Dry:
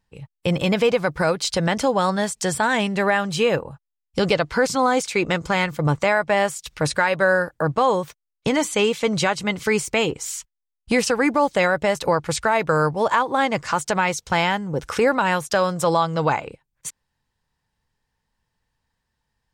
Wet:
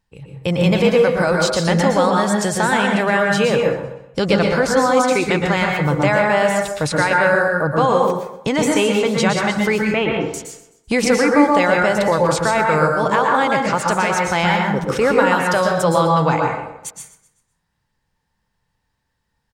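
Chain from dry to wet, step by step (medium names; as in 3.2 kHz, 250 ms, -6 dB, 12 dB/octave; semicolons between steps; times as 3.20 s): 9.78–10.34 s: low-pass 3.1 kHz 24 dB/octave; on a send: feedback delay 127 ms, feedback 43%, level -17 dB; on the sum: plate-style reverb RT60 0.68 s, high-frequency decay 0.45×, pre-delay 105 ms, DRR 0.5 dB; trim +1 dB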